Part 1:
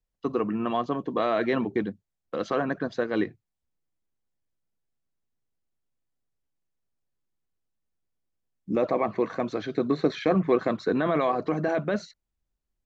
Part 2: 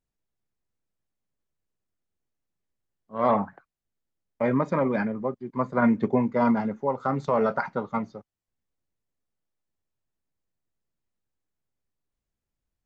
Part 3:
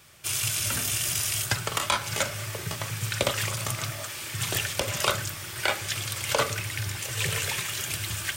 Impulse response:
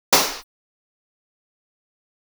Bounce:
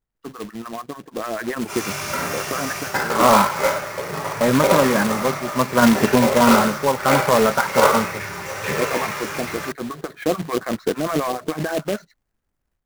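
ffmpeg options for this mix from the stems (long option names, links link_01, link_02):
-filter_complex "[0:a]acrossover=split=800[link_01][link_02];[link_01]aeval=exprs='val(0)*(1-1/2+1/2*cos(2*PI*6.8*n/s))':channel_layout=same[link_03];[link_02]aeval=exprs='val(0)*(1-1/2-1/2*cos(2*PI*6.8*n/s))':channel_layout=same[link_04];[link_03][link_04]amix=inputs=2:normalize=0,volume=-2dB[link_05];[1:a]volume=0.5dB[link_06];[2:a]adelay=1350,volume=-17dB,asplit=2[link_07][link_08];[link_08]volume=-7dB[link_09];[3:a]atrim=start_sample=2205[link_10];[link_09][link_10]afir=irnorm=-1:irlink=0[link_11];[link_05][link_06][link_07][link_11]amix=inputs=4:normalize=0,highshelf=frequency=2400:width_type=q:width=1.5:gain=-8.5,dynaudnorm=framelen=980:gausssize=3:maxgain=8dB,acrusher=bits=2:mode=log:mix=0:aa=0.000001"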